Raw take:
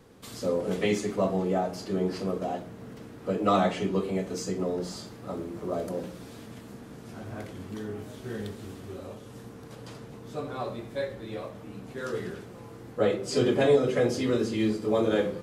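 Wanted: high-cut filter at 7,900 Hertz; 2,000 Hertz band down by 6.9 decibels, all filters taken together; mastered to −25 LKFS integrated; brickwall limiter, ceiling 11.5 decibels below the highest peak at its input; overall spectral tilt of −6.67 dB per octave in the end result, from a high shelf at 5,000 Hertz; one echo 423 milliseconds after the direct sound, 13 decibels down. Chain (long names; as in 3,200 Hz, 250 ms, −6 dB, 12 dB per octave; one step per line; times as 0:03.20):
low-pass filter 7,900 Hz
parametric band 2,000 Hz −8 dB
high-shelf EQ 5,000 Hz −6 dB
brickwall limiter −23 dBFS
single-tap delay 423 ms −13 dB
level +9.5 dB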